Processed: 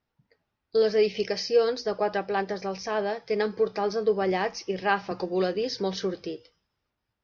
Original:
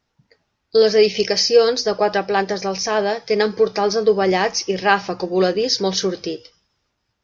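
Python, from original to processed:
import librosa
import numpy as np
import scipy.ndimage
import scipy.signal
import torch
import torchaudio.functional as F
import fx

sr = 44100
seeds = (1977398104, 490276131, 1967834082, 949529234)

y = fx.air_absorb(x, sr, metres=150.0)
y = fx.band_squash(y, sr, depth_pct=40, at=(5.11, 6.14))
y = y * librosa.db_to_amplitude(-8.0)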